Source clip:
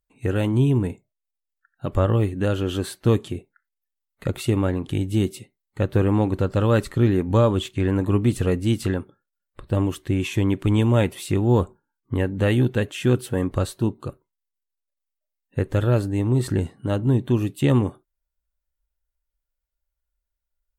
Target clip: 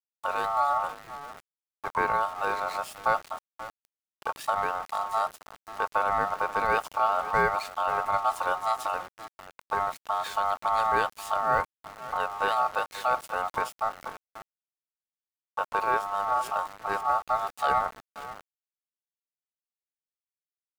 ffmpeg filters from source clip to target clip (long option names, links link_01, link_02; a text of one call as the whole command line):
ffmpeg -i in.wav -af "aecho=1:1:534|1068:0.178|0.0302,aeval=exprs='val(0)*gte(abs(val(0)),0.0224)':channel_layout=same,aeval=exprs='val(0)*sin(2*PI*1000*n/s)':channel_layout=same,volume=-4dB" out.wav